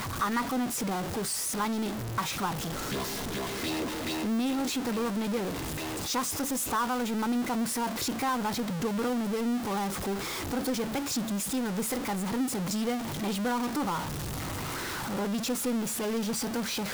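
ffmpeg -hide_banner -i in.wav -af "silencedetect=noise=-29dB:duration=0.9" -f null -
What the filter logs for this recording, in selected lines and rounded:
silence_start: 13.99
silence_end: 15.11 | silence_duration: 1.12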